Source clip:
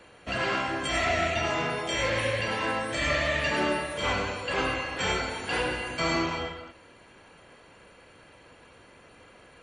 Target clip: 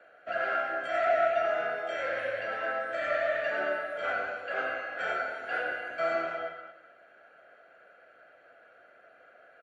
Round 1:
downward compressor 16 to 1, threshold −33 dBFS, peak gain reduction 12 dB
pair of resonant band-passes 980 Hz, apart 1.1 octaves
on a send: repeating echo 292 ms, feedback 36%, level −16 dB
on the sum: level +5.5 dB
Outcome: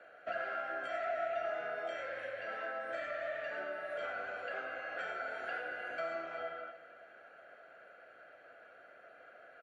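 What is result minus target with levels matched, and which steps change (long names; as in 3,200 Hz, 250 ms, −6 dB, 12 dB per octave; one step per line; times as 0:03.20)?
downward compressor: peak gain reduction +12 dB; echo 104 ms late
change: repeating echo 188 ms, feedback 36%, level −16 dB
remove: downward compressor 16 to 1, threshold −33 dBFS, peak gain reduction 12 dB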